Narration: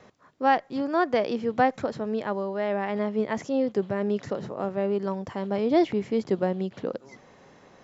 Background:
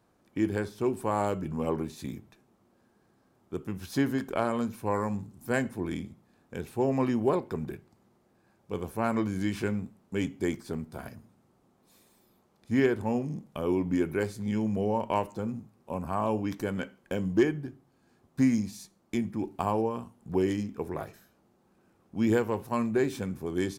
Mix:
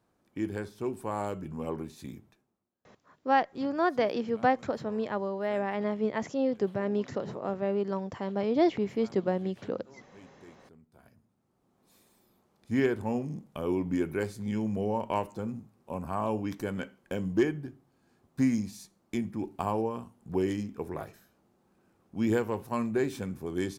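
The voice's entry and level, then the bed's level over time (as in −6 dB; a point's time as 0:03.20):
2.85 s, −3.0 dB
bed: 0:02.29 −5 dB
0:02.72 −23.5 dB
0:10.75 −23.5 dB
0:11.84 −2 dB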